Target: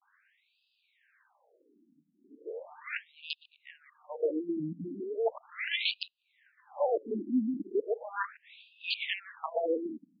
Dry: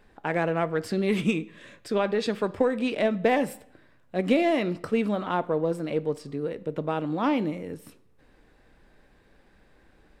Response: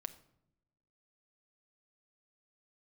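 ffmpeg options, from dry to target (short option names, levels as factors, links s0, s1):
-af "areverse,aeval=exprs='(mod(5.96*val(0)+1,2)-1)/5.96':c=same,afftfilt=real='re*between(b*sr/1024,230*pow(3600/230,0.5+0.5*sin(2*PI*0.37*pts/sr))/1.41,230*pow(3600/230,0.5+0.5*sin(2*PI*0.37*pts/sr))*1.41)':imag='im*between(b*sr/1024,230*pow(3600/230,0.5+0.5*sin(2*PI*0.37*pts/sr))/1.41,230*pow(3600/230,0.5+0.5*sin(2*PI*0.37*pts/sr))*1.41)':win_size=1024:overlap=0.75"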